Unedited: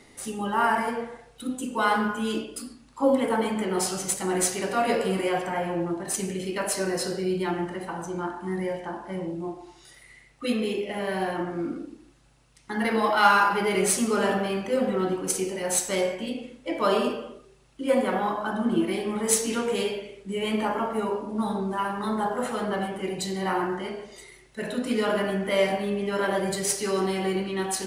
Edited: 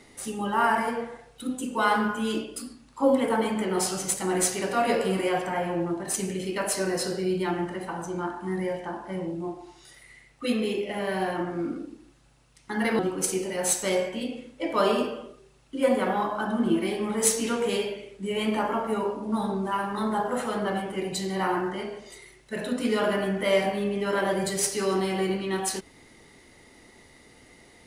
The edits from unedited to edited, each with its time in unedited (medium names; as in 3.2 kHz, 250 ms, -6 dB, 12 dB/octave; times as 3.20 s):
12.99–15.05 s: delete